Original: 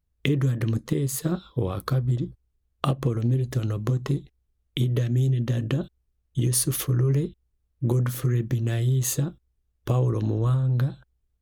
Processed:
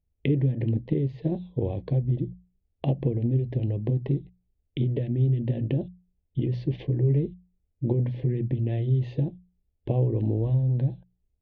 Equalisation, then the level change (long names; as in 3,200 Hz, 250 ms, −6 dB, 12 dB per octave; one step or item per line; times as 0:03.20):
Gaussian smoothing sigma 3.5 samples
Butterworth band-reject 1,300 Hz, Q 0.99
mains-hum notches 60/120/180 Hz
0.0 dB